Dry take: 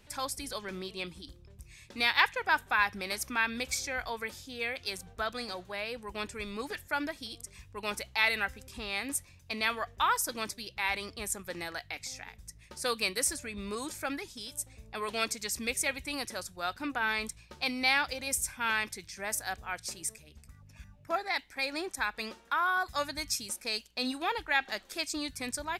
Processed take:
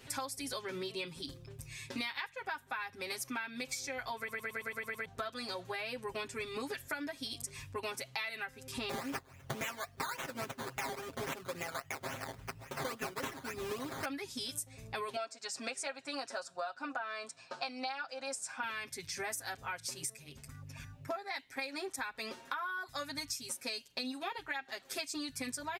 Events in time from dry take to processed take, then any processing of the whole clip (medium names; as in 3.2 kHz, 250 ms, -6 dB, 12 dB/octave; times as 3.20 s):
4.17 s: stutter in place 0.11 s, 8 plays
8.89–14.05 s: decimation with a swept rate 13×, swing 60% 3.6 Hz
15.16–18.63 s: cabinet simulation 360–7400 Hz, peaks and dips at 380 Hz -6 dB, 690 Hz +10 dB, 1.4 kHz +6 dB, 2.1 kHz -9 dB, 3.4 kHz -6 dB, 6.1 kHz -6 dB
whole clip: high-pass 63 Hz; comb 7.5 ms, depth 99%; compression 16:1, threshold -40 dBFS; trim +4 dB